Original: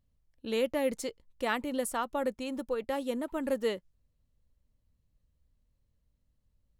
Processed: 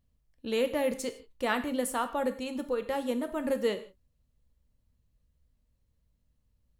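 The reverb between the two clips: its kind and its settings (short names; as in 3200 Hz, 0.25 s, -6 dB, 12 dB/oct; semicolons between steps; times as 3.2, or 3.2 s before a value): non-linear reverb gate 0.19 s falling, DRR 8 dB; gain +1 dB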